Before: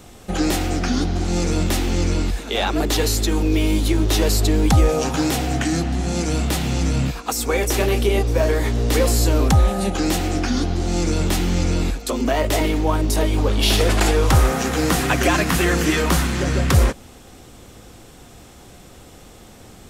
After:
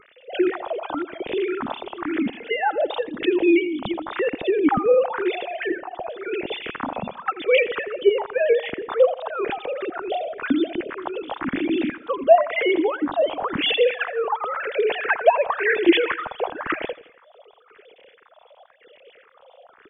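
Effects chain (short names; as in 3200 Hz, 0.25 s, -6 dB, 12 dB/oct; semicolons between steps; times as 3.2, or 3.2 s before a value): sine-wave speech; phaser stages 4, 0.96 Hz, lowest notch 280–1300 Hz; feedback echo 83 ms, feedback 52%, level -19 dB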